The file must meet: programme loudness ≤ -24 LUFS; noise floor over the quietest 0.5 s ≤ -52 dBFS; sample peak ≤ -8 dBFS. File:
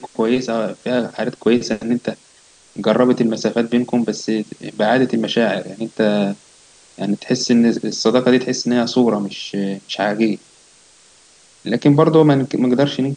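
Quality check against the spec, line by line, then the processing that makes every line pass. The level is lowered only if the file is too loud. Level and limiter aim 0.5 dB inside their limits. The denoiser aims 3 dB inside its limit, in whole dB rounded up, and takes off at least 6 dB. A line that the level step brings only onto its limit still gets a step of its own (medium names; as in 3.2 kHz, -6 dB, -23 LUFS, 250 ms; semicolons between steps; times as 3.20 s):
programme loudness -17.5 LUFS: fail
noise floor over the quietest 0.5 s -50 dBFS: fail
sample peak -2.0 dBFS: fail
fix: trim -7 dB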